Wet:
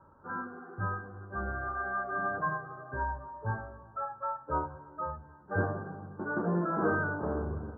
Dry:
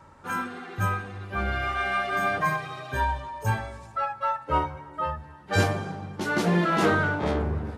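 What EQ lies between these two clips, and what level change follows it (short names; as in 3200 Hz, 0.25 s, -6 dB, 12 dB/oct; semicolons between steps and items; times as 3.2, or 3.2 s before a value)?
rippled Chebyshev low-pass 1600 Hz, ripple 3 dB; -5.5 dB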